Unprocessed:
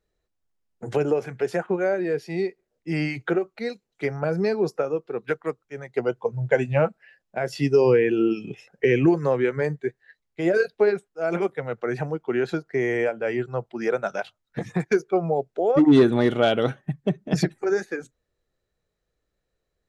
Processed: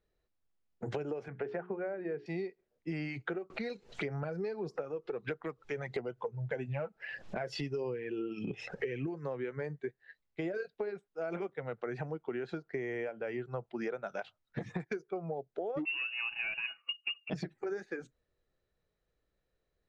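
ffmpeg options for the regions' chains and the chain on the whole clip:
-filter_complex "[0:a]asettb=1/sr,asplit=3[a][b][c];[a]atrim=end=1.284[d];[b]atrim=start=1.28:end=2.26,asetpts=PTS-STARTPTS,afade=t=in:d=0.004:c=qsin,afade=t=out:st=0.976:d=0.004:c=qsin,highpass=100,lowpass=2.2k,bandreject=f=60:t=h:w=6,bandreject=f=120:t=h:w=6,bandreject=f=180:t=h:w=6,bandreject=f=240:t=h:w=6,bandreject=f=300:t=h:w=6,bandreject=f=360:t=h:w=6,bandreject=f=420:t=h:w=6[e];[c]atrim=start=2.256[f];[d][e]acrossfade=d=0.004:c1=hsin:c2=qsin[g];[g][f]acrossfade=d=0.004:c1=qsin:c2=hsin,asettb=1/sr,asplit=3[h][i][j];[h]atrim=end=3.504[k];[i]atrim=start=3.5:end=9.07,asetpts=PTS-STARTPTS,afade=t=in:d=0.004:c=qsin,afade=t=out:st=5.566:d=0.004:c=qsin,acompressor=mode=upward:threshold=-21dB:ratio=2.5:attack=3.2:release=140:knee=2.83:detection=peak,aphaser=in_gain=1:out_gain=1:delay=2.4:decay=0.38:speed=1.6:type=sinusoidal[l];[j]atrim=start=9.066[m];[k][l]acrossfade=d=0.004:c1=hsin:c2=qsin[n];[n][m]acrossfade=d=0.004:c1=qsin:c2=hsin,asettb=1/sr,asplit=3[o][p][q];[o]atrim=end=15.854[r];[p]atrim=start=15.85:end=17.3,asetpts=PTS-STARTPTS,afade=t=in:d=0.004:c=qsin,afade=t=out:st=1.446:d=0.004:c=qsin,aecho=1:1:6:0.54,atrim=end_sample=63945,lowpass=f=2.6k:t=q:w=0.5098,lowpass=f=2.6k:t=q:w=0.6013,lowpass=f=2.6k:t=q:w=0.9,lowpass=f=2.6k:t=q:w=2.563,afreqshift=-3000[s];[q]atrim=start=17.296[t];[r][s]acrossfade=d=0.004:c1=hsin:c2=qsin[u];[u][t]acrossfade=d=0.004:c1=qsin:c2=hsin,lowpass=4.7k,acompressor=threshold=-31dB:ratio=10,volume=-3dB"

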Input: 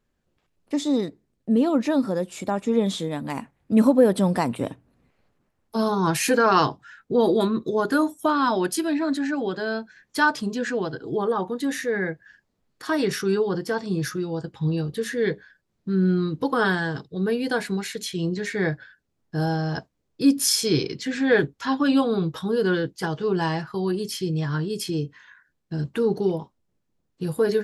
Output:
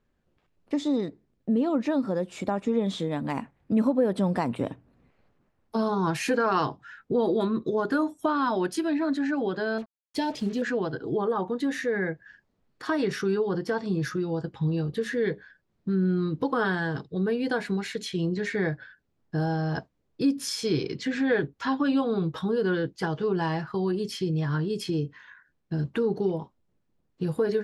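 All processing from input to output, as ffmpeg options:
-filter_complex "[0:a]asettb=1/sr,asplit=3[a][b][c];[a]atrim=end=9.784[d];[b]atrim=start=9.78:end=10.62,asetpts=PTS-STARTPTS,afade=t=in:d=0.004:c=qsin,afade=t=out:st=0.836:d=0.004:c=qsin,asuperstop=centerf=1300:order=4:qfactor=0.98,acrusher=bits=6:mix=0:aa=0.5[e];[c]atrim=start=10.616[f];[d][e]acrossfade=d=0.004:c1=hsin:c2=qsin[g];[g][f]acrossfade=d=0.004:c1=qsin:c2=hsin,acompressor=threshold=-27dB:ratio=2,aemphasis=mode=reproduction:type=50fm,volume=1dB"

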